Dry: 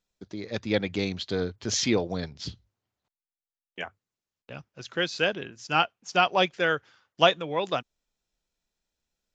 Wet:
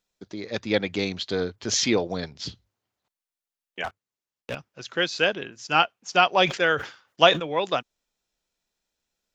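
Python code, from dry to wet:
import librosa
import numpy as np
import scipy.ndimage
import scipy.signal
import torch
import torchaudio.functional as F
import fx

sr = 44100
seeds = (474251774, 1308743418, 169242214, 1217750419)

y = fx.low_shelf(x, sr, hz=170.0, db=-8.0)
y = fx.leveller(y, sr, passes=3, at=(3.84, 4.55))
y = fx.sustainer(y, sr, db_per_s=140.0, at=(6.42, 7.52))
y = F.gain(torch.from_numpy(y), 3.5).numpy()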